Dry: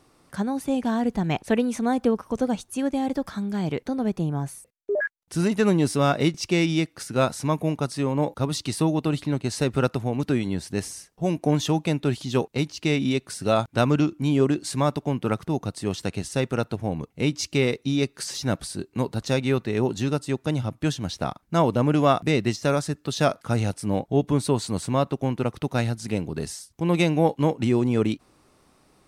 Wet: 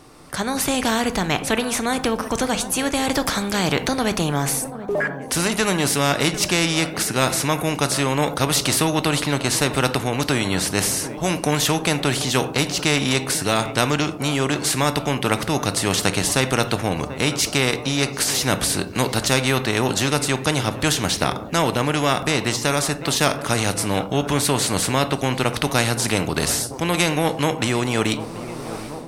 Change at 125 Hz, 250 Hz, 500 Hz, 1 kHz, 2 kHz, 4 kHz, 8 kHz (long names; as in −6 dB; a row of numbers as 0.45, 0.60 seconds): +1.0, +0.5, +2.0, +6.0, +10.0, +11.5, +14.0 decibels